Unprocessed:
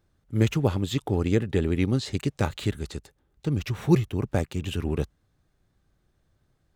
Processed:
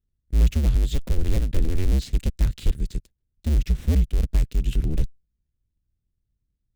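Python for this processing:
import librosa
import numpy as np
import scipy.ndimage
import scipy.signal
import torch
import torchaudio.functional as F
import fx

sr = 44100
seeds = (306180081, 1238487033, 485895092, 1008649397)

y = fx.cycle_switch(x, sr, every=2, mode='inverted')
y = fx.leveller(y, sr, passes=3)
y = fx.tone_stack(y, sr, knobs='10-0-1')
y = y * 10.0 ** (7.0 / 20.0)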